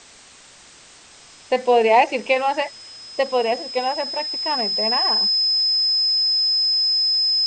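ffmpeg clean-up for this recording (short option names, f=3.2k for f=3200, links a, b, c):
-af "bandreject=f=5.1k:w=30,afwtdn=0.0071"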